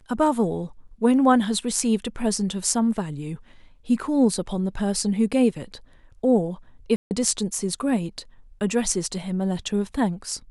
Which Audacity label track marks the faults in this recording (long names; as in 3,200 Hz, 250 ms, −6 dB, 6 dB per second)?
6.960000	7.110000	drop-out 149 ms